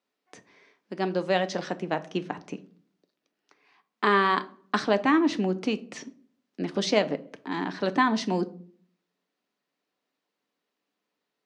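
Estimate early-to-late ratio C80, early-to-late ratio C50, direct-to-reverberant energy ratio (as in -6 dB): 22.5 dB, 18.0 dB, 10.0 dB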